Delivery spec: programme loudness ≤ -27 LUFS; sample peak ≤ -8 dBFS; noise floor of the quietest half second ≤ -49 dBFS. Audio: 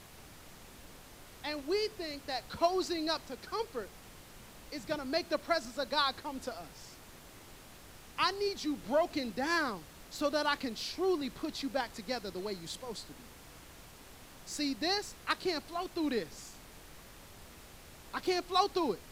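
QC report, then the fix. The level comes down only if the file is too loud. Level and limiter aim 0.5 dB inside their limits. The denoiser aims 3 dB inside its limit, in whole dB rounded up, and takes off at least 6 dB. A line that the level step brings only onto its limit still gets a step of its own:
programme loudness -34.5 LUFS: OK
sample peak -16.0 dBFS: OK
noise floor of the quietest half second -53 dBFS: OK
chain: none

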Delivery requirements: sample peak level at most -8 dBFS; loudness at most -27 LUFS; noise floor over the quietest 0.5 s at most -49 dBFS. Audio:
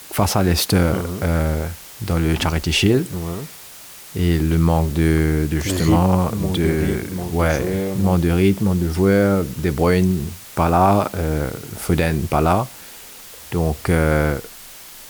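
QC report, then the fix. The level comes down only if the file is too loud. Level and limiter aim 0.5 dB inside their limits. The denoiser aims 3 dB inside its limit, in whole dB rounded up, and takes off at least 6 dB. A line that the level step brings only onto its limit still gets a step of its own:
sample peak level -3.5 dBFS: fail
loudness -19.0 LUFS: fail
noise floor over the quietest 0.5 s -39 dBFS: fail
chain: denoiser 6 dB, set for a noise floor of -39 dBFS; gain -8.5 dB

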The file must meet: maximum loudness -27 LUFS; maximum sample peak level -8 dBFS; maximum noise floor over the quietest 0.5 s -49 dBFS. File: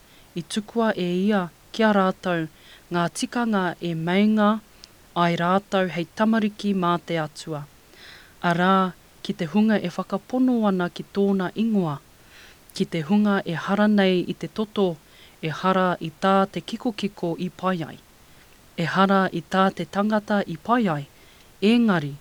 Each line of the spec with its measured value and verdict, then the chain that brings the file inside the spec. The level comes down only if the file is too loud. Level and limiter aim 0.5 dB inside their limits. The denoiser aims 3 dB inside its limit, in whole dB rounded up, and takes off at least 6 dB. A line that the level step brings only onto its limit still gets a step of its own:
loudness -23.0 LUFS: fail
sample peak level -4.0 dBFS: fail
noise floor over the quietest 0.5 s -51 dBFS: OK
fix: gain -4.5 dB

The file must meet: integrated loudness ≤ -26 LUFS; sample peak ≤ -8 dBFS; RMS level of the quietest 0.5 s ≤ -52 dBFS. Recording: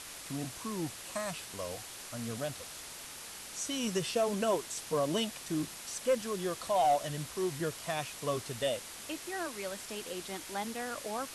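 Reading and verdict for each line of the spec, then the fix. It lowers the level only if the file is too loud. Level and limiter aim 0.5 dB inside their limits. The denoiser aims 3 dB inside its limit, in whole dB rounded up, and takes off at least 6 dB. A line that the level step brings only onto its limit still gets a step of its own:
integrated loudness -35.5 LUFS: OK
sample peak -19.0 dBFS: OK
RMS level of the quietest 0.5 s -46 dBFS: fail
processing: denoiser 9 dB, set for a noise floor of -46 dBFS

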